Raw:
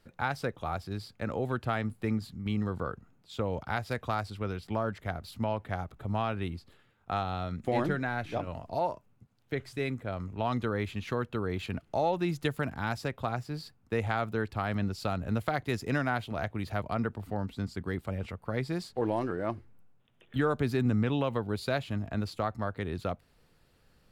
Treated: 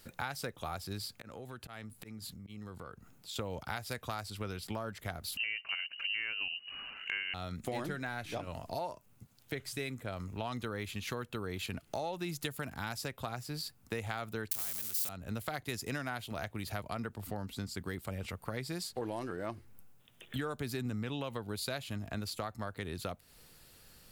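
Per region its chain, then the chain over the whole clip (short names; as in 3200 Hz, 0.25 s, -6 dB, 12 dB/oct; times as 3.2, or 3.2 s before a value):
1.15–3.36 auto swell 0.17 s + compressor 2.5:1, threshold -54 dBFS
5.37–7.34 inverted band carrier 2900 Hz + upward compressor, threshold -39 dBFS
14.51–15.09 switching spikes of -26.5 dBFS + spectral compressor 2:1
whole clip: pre-emphasis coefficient 0.8; compressor 3:1, threshold -55 dBFS; gain +16.5 dB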